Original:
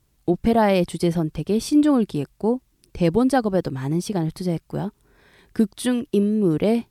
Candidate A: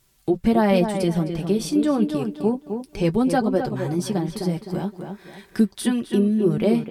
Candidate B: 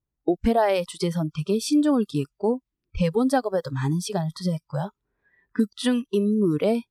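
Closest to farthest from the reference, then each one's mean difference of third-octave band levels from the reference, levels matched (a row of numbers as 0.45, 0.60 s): A, B; 4.0, 5.5 dB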